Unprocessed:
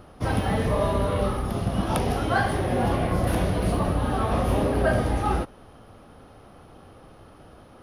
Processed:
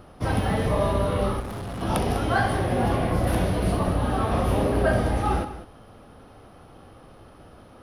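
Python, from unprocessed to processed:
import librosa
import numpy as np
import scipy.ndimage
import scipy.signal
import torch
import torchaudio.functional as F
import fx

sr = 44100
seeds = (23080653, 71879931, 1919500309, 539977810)

y = fx.notch(x, sr, hz=6600.0, q=28.0)
y = fx.echo_multitap(y, sr, ms=(64, 199), db=(-13.0, -13.5))
y = fx.overload_stage(y, sr, gain_db=31.0, at=(1.4, 1.82))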